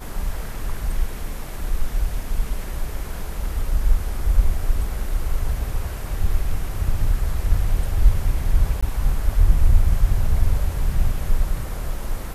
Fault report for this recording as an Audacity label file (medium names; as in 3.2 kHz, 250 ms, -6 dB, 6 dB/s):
8.810000	8.820000	dropout 15 ms